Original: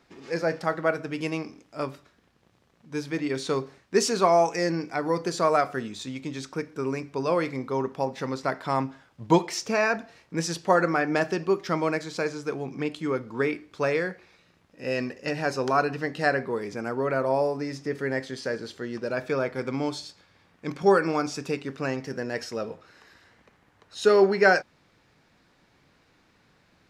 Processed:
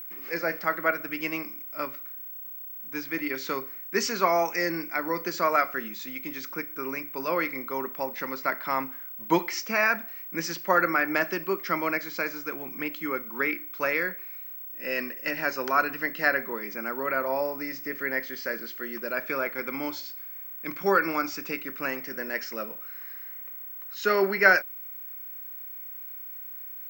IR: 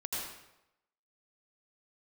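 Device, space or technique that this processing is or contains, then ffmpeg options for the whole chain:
old television with a line whistle: -af "highpass=frequency=210:width=0.5412,highpass=frequency=210:width=1.3066,equalizer=frequency=260:width_type=q:width=4:gain=-5,equalizer=frequency=440:width_type=q:width=4:gain=-9,equalizer=frequency=750:width_type=q:width=4:gain=-7,equalizer=frequency=1400:width_type=q:width=4:gain=4,equalizer=frequency=2100:width_type=q:width=4:gain=8,equalizer=frequency=3700:width_type=q:width=4:gain=-6,lowpass=frequency=6500:width=0.5412,lowpass=frequency=6500:width=1.3066,aeval=exprs='val(0)+0.0141*sin(2*PI*15734*n/s)':channel_layout=same"

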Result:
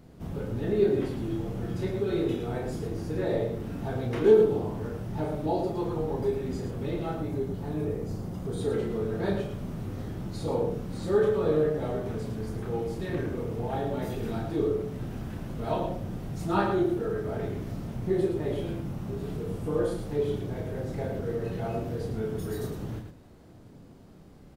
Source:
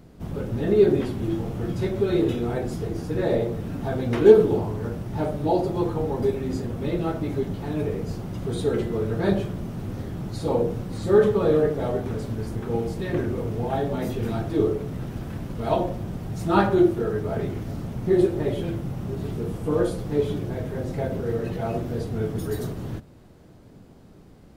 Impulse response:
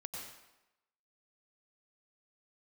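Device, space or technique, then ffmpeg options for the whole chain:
parallel compression: -filter_complex "[0:a]asettb=1/sr,asplit=3[link_01][link_02][link_03];[link_01]atrim=end=7.154[link_04];[link_02]atrim=start=7.15:end=8.61,asetpts=PTS-STARTPTS,afade=type=in:duration=0.004:curve=qsin,afade=type=out:start_time=1.456:duration=0.004:curve=qsin,equalizer=frequency=2800:width=0.74:gain=-5.5[link_05];[link_03]atrim=start=8.606[link_06];[link_04][link_05]acrossfade=duration=0.004:curve1=hsin:curve2=qsin[link_07];[link_07][link_06]acrossfade=duration=0.004:curve1=qsin:curve2=hsin,aecho=1:1:32.07|110.8:0.562|0.447,asplit=2[link_08][link_09];[link_09]acompressor=threshold=-30dB:ratio=6,volume=-3dB[link_10];[link_08][link_10]amix=inputs=2:normalize=0,volume=-8.5dB"

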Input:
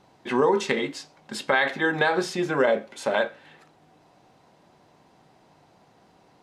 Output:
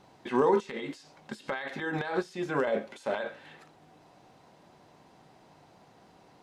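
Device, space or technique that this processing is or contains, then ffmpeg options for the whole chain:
de-esser from a sidechain: -filter_complex "[0:a]asplit=2[link_01][link_02];[link_02]highpass=6100,apad=whole_len=283455[link_03];[link_01][link_03]sidechaincompress=threshold=-55dB:ratio=8:attack=2.7:release=56"

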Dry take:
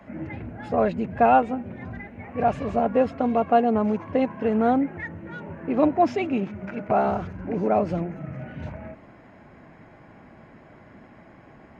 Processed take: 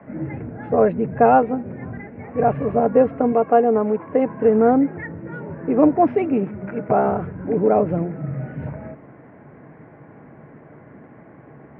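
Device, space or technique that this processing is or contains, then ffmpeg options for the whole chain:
bass cabinet: -filter_complex "[0:a]asettb=1/sr,asplit=3[link_01][link_02][link_03];[link_01]atrim=end=3.324[link_04];[link_02]atrim=start=3.32:end=4.26,asetpts=PTS-STARTPTS,afade=type=in:duration=0.004:curve=qsin,afade=type=out:start_time=0.936:duration=0.004:curve=qsin,highpass=frequency=260:poles=1[link_05];[link_03]atrim=start=4.256[link_06];[link_04][link_05]acrossfade=duration=0.004:curve1=hsin:curve2=qsin[link_07];[link_07][link_06]acrossfade=duration=0.004:curve1=qsin:curve2=hsin,highpass=76,equalizer=frequency=140:width_type=q:width=4:gain=9,equalizer=frequency=290:width_type=q:width=4:gain=4,equalizer=frequency=450:width_type=q:width=4:gain=8,lowpass=frequency=2100:width=0.5412,lowpass=frequency=2100:width=1.3066,volume=2dB"

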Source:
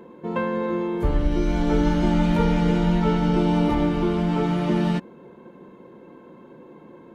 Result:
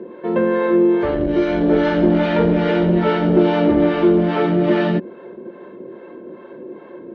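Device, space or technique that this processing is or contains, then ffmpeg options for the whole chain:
guitar amplifier with harmonic tremolo: -filter_complex "[0:a]acrossover=split=530[link_01][link_02];[link_01]aeval=exprs='val(0)*(1-0.7/2+0.7/2*cos(2*PI*2.4*n/s))':channel_layout=same[link_03];[link_02]aeval=exprs='val(0)*(1-0.7/2-0.7/2*cos(2*PI*2.4*n/s))':channel_layout=same[link_04];[link_03][link_04]amix=inputs=2:normalize=0,asoftclip=type=tanh:threshold=-17dB,highpass=100,equalizer=frequency=150:width_type=q:width=4:gain=-6,equalizer=frequency=370:width_type=q:width=4:gain=9,equalizer=frequency=600:width_type=q:width=4:gain=8,equalizer=frequency=870:width_type=q:width=4:gain=-3,equalizer=frequency=1700:width_type=q:width=4:gain=6,lowpass=frequency=4100:width=0.5412,lowpass=frequency=4100:width=1.3066,volume=8.5dB"

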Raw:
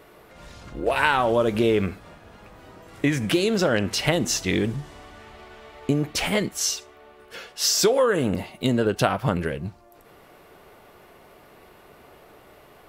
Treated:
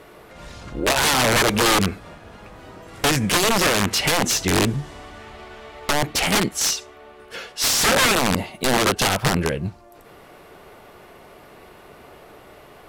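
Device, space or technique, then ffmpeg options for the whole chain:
overflowing digital effects unit: -af "aeval=exprs='(mod(7.08*val(0)+1,2)-1)/7.08':channel_layout=same,lowpass=13000,volume=5dB"

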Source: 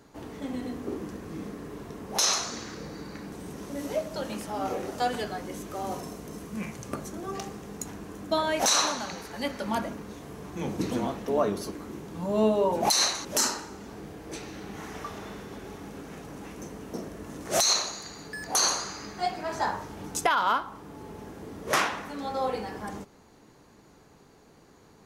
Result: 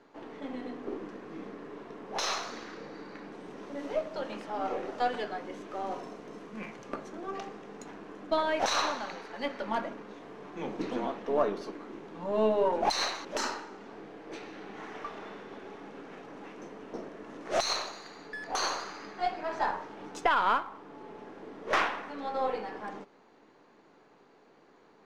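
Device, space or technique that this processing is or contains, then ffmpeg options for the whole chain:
crystal radio: -af "highpass=290,lowpass=3200,aeval=exprs='if(lt(val(0),0),0.708*val(0),val(0))':channel_layout=same"

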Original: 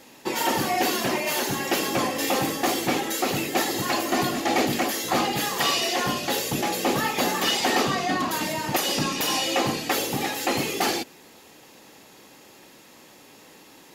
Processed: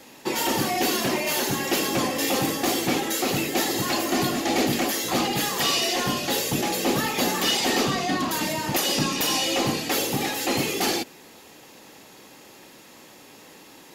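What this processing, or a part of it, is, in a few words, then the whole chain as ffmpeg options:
one-band saturation: -filter_complex "[0:a]acrossover=split=470|2600[link_01][link_02][link_03];[link_02]asoftclip=type=tanh:threshold=-28.5dB[link_04];[link_01][link_04][link_03]amix=inputs=3:normalize=0,volume=2dB"

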